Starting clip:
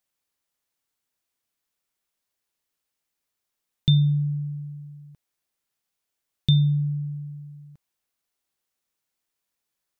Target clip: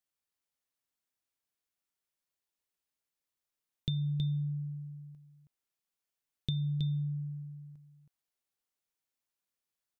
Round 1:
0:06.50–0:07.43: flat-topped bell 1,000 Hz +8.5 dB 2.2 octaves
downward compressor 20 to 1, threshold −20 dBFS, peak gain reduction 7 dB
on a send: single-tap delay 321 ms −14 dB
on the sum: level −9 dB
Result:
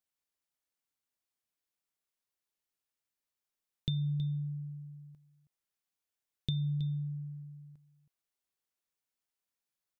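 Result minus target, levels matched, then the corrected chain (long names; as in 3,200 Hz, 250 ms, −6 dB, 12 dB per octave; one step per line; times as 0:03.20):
echo-to-direct −7.5 dB
0:06.50–0:07.43: flat-topped bell 1,000 Hz +8.5 dB 2.2 octaves
downward compressor 20 to 1, threshold −20 dBFS, peak gain reduction 7 dB
on a send: single-tap delay 321 ms −6.5 dB
on the sum: level −9 dB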